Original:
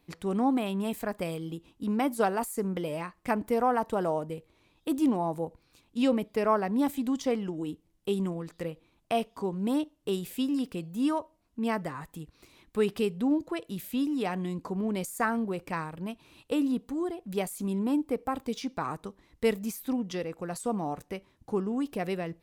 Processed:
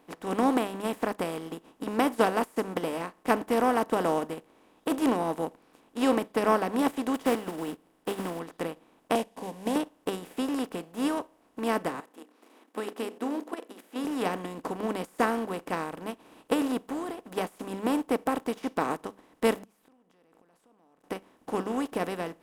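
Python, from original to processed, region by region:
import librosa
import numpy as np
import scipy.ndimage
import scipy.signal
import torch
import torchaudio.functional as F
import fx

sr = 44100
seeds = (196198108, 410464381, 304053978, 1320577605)

y = fx.chain(x, sr, fx.block_float(bits=5),
    fx.peak_eq(hz=6300.0, db=-7.0, octaves=0.32), at=(7.14, 8.4))
y = fx.chain(y, sr, fx.cvsd(bps=64000),
    fx.fixed_phaser(hz=350.0, stages=6), at=(9.15, 9.76))
y = fx.chain(y, sr, fx.hum_notches(base_hz=60, count=9),
    fx.level_steps(step_db=10),
    fx.brickwall_highpass(low_hz=220.0), at=(12.0, 14.05))
y = fx.chain(y, sr, fx.gate_flip(shuts_db=-32.0, range_db=-39),
    fx.pre_swell(db_per_s=35.0), at=(19.55, 21.04))
y = fx.bin_compress(y, sr, power=0.4)
y = fx.hum_notches(y, sr, base_hz=50, count=4)
y = fx.upward_expand(y, sr, threshold_db=-35.0, expansion=2.5)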